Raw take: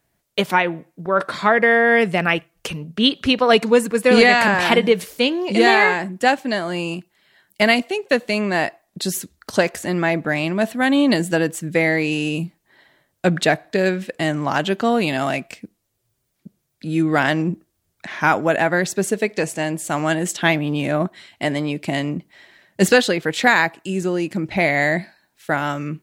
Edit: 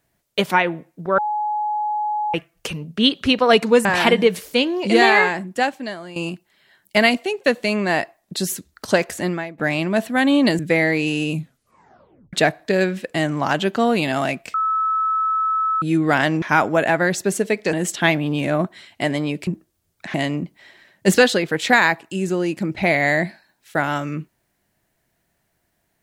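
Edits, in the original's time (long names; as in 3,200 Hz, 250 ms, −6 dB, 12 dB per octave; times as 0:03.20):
0:01.18–0:02.34: beep over 843 Hz −19.5 dBFS
0:03.85–0:04.50: remove
0:05.88–0:06.81: fade out, to −14 dB
0:09.92–0:10.23: fade out quadratic, to −18 dB
0:11.24–0:11.64: remove
0:12.37: tape stop 1.01 s
0:15.59–0:16.87: beep over 1,300 Hz −17 dBFS
0:17.47–0:18.14: move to 0:21.88
0:19.45–0:20.14: remove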